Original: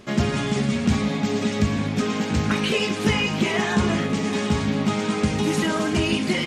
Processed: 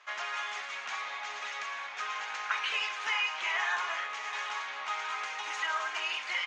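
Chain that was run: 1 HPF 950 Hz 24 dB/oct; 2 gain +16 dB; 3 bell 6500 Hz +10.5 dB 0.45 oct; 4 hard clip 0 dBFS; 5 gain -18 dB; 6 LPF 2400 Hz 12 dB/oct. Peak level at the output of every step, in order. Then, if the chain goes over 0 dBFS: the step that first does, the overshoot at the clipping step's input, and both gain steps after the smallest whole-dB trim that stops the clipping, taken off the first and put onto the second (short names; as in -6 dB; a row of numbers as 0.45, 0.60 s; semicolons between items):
-14.5, +1.5, +3.5, 0.0, -18.0, -19.0 dBFS; step 2, 3.5 dB; step 2 +12 dB, step 5 -14 dB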